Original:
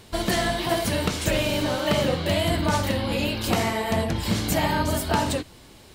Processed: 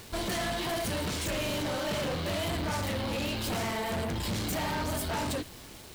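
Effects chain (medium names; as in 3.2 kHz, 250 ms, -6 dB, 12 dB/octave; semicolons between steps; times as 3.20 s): word length cut 8-bit, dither none; saturation -29.5 dBFS, distortion -6 dB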